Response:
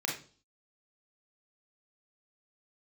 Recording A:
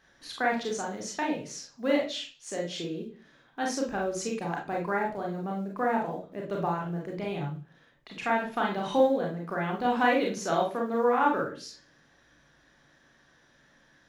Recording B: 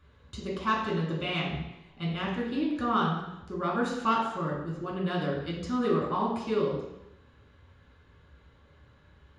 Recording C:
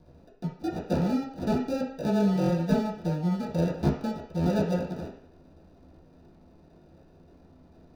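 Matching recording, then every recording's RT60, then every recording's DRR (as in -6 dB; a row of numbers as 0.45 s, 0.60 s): A; 0.40 s, 0.85 s, 0.55 s; -1.0 dB, -4.0 dB, -11.0 dB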